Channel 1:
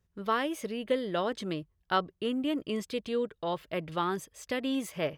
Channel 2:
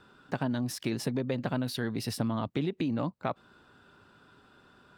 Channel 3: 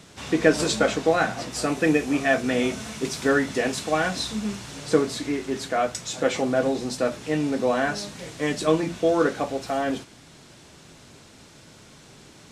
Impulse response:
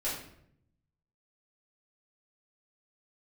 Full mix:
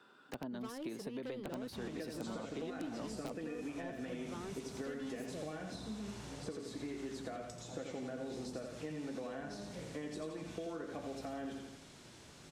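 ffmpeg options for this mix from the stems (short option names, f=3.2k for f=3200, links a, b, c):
-filter_complex "[0:a]asoftclip=type=tanh:threshold=-31.5dB,adelay=350,volume=-6dB[a];[1:a]highpass=270,aeval=exprs='(mod(9.44*val(0)+1,2)-1)/9.44':c=same,volume=-4dB[b];[2:a]acompressor=threshold=-27dB:ratio=6,adelay=1550,volume=-8.5dB,asplit=2[c][d];[d]volume=-6dB,aecho=0:1:84|168|252|336|420|504:1|0.46|0.212|0.0973|0.0448|0.0206[e];[a][b][c][e]amix=inputs=4:normalize=0,acrossover=split=540|1100[f][g][h];[f]acompressor=threshold=-41dB:ratio=4[i];[g]acompressor=threshold=-55dB:ratio=4[j];[h]acompressor=threshold=-54dB:ratio=4[k];[i][j][k]amix=inputs=3:normalize=0"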